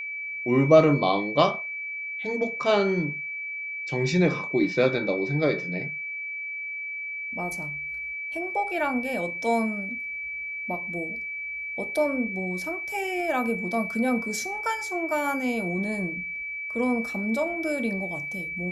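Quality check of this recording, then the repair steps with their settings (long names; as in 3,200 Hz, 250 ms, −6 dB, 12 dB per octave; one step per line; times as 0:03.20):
whistle 2,300 Hz −31 dBFS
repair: notch filter 2,300 Hz, Q 30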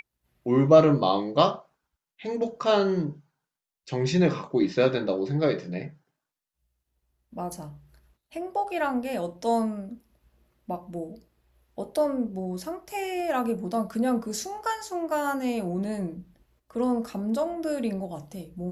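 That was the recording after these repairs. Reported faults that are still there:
none of them is left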